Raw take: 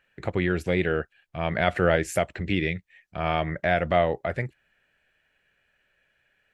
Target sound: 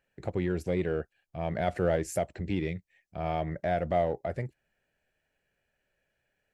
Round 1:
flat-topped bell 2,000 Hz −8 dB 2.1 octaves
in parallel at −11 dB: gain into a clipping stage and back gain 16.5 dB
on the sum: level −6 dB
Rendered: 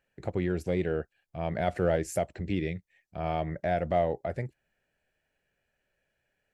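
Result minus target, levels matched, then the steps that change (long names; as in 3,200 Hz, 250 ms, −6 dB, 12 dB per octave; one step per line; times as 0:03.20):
gain into a clipping stage and back: distortion −8 dB
change: gain into a clipping stage and back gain 22.5 dB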